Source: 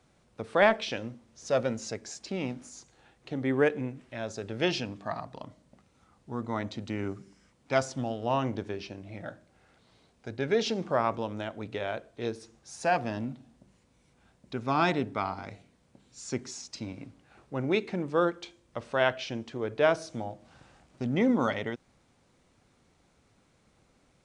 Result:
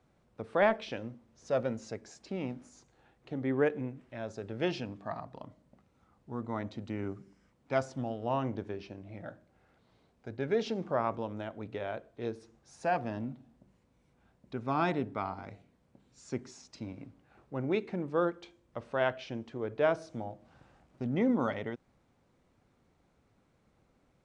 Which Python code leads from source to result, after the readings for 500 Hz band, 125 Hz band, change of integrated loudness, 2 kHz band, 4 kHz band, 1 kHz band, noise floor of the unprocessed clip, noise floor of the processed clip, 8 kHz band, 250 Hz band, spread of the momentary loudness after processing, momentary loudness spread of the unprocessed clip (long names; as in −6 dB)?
−3.5 dB, −3.0 dB, −4.0 dB, −6.0 dB, −9.5 dB, −4.0 dB, −67 dBFS, −71 dBFS, −12.0 dB, −3.0 dB, 17 LU, 17 LU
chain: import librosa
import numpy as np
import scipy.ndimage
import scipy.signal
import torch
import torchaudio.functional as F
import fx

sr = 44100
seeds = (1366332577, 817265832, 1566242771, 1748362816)

y = fx.high_shelf(x, sr, hz=2700.0, db=-10.5)
y = y * 10.0 ** (-3.0 / 20.0)